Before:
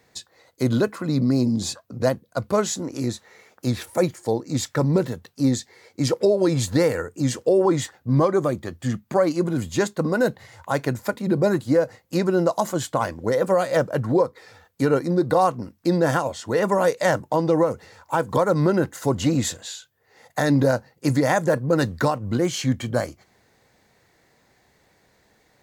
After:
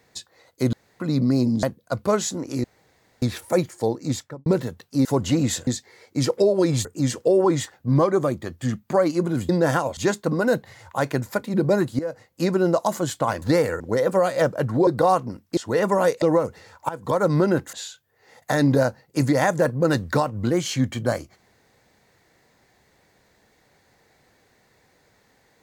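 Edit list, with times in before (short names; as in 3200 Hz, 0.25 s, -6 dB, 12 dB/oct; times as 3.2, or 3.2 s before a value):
0.73–1 room tone
1.63–2.08 cut
3.09–3.67 room tone
4.5–4.91 studio fade out
6.68–7.06 move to 13.15
11.72–12.17 fade in, from -14 dB
14.22–15.19 cut
15.89–16.37 move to 9.7
17.02–17.48 cut
18.15–18.49 fade in, from -16 dB
18.99–19.61 move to 5.5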